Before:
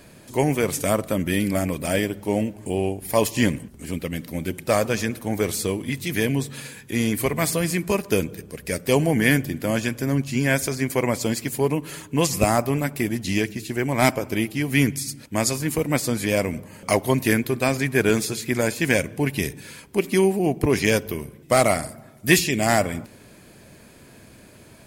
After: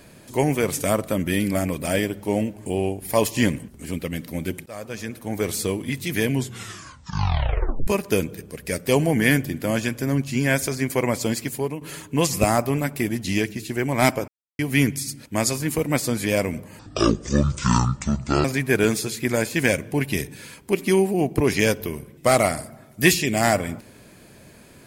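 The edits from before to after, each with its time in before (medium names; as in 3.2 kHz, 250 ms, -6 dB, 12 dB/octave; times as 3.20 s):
4.66–5.59 s: fade in, from -23.5 dB
6.33 s: tape stop 1.54 s
11.42–11.81 s: fade out, to -10.5 dB
14.28–14.59 s: mute
16.79–17.70 s: speed 55%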